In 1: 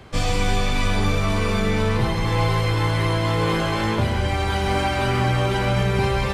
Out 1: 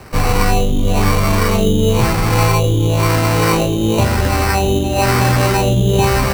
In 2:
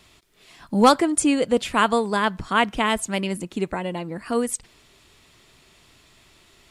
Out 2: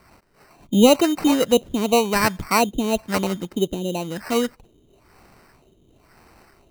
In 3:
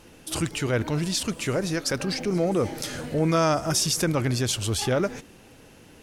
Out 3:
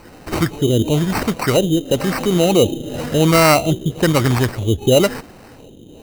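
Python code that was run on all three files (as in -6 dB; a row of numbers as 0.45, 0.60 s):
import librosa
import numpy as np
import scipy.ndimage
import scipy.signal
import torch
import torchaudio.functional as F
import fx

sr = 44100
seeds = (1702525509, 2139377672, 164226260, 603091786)

y = fx.filter_lfo_lowpass(x, sr, shape='sine', hz=0.99, low_hz=340.0, high_hz=4300.0, q=1.6)
y = fx.sample_hold(y, sr, seeds[0], rate_hz=3400.0, jitter_pct=0)
y = y * 10.0 ** (-2 / 20.0) / np.max(np.abs(y))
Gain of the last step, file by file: +6.5, +2.0, +9.0 dB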